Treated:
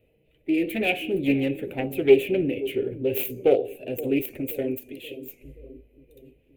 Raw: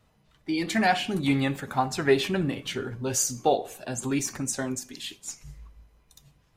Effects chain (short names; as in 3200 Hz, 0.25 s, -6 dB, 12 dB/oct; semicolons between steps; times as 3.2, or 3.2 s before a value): self-modulated delay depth 0.3 ms; EQ curve 110 Hz 0 dB, 200 Hz -4 dB, 300 Hz +7 dB, 500 Hz +12 dB, 1100 Hz -23 dB, 1700 Hz -11 dB, 2500 Hz +8 dB, 5400 Hz -25 dB, 13000 Hz +2 dB; on a send: analogue delay 0.526 s, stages 2048, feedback 51%, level -14.5 dB; on the sum: gain -2 dB